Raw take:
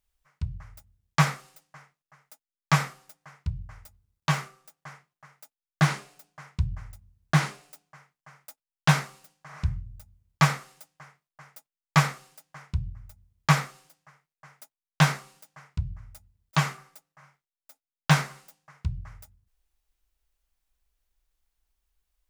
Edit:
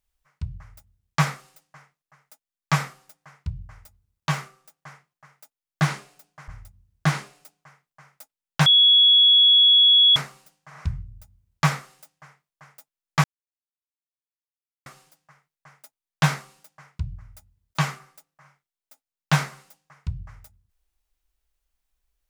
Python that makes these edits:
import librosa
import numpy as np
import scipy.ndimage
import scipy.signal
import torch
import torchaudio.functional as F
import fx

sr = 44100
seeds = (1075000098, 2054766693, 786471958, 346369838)

y = fx.edit(x, sr, fx.cut(start_s=6.48, length_s=0.28),
    fx.insert_tone(at_s=8.94, length_s=1.5, hz=3360.0, db=-11.5),
    fx.silence(start_s=12.02, length_s=1.62), tone=tone)